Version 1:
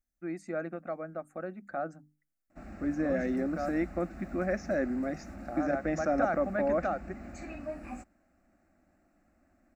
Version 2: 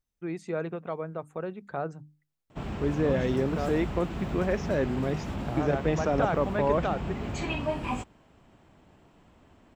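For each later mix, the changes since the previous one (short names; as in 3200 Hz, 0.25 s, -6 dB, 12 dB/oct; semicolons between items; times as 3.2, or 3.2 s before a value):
background +7.5 dB; master: remove fixed phaser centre 650 Hz, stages 8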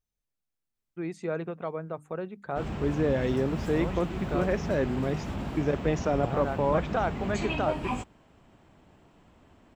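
first voice: entry +0.75 s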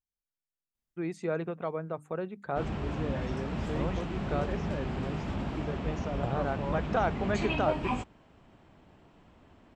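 second voice -11.0 dB; background: add LPF 6100 Hz 12 dB/oct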